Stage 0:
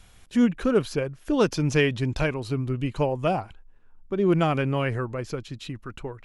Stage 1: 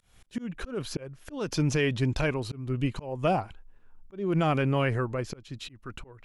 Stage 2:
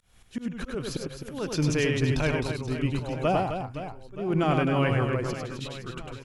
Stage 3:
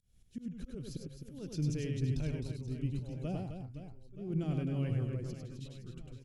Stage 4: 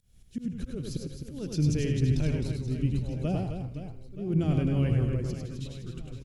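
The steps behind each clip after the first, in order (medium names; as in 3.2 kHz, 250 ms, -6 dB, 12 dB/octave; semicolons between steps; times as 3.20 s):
peak limiter -16.5 dBFS, peak gain reduction 7 dB; slow attack 269 ms
reverse bouncing-ball echo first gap 100 ms, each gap 1.6×, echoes 5
FFT filter 170 Hz 0 dB, 550 Hz -11 dB, 1 kHz -22 dB, 5.3 kHz -7 dB; trim -6.5 dB
frequency-shifting echo 80 ms, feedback 59%, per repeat -72 Hz, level -13.5 dB; trim +8 dB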